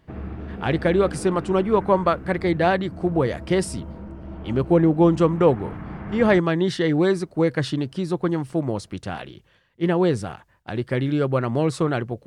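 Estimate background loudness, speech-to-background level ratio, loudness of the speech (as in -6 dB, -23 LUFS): -36.5 LUFS, 14.5 dB, -22.0 LUFS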